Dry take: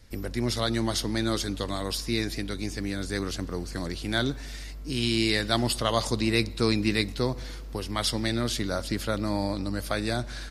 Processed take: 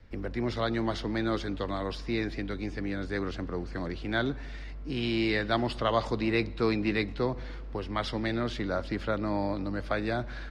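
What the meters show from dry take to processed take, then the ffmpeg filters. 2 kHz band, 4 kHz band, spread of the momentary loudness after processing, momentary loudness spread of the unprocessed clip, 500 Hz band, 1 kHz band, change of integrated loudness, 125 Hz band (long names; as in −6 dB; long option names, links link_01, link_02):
−1.5 dB, −9.0 dB, 8 LU, 9 LU, −0.5 dB, 0.0 dB, −3.0 dB, −4.0 dB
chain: -filter_complex "[0:a]lowpass=2400,acrossover=split=250|920[link_01][link_02][link_03];[link_01]asoftclip=type=tanh:threshold=-33dB[link_04];[link_04][link_02][link_03]amix=inputs=3:normalize=0"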